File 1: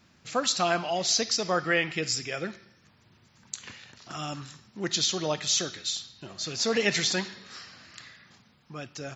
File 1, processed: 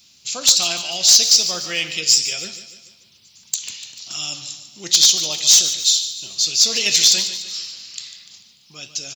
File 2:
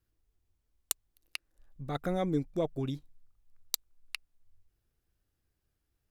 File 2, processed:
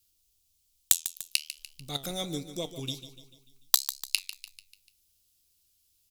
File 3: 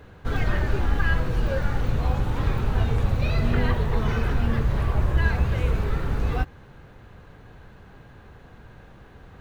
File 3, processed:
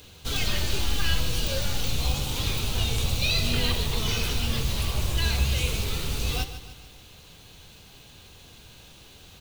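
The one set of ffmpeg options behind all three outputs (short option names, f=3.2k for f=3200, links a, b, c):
-af "flanger=delay=9.9:depth=5.8:regen=77:speed=1.2:shape=triangular,aexciter=amount=5.5:drive=9.4:freq=2.6k,aeval=exprs='0.75*(abs(mod(val(0)/0.75+3,4)-2)-1)':c=same,aecho=1:1:147|294|441|588|735:0.237|0.119|0.0593|0.0296|0.0148,volume=-1dB"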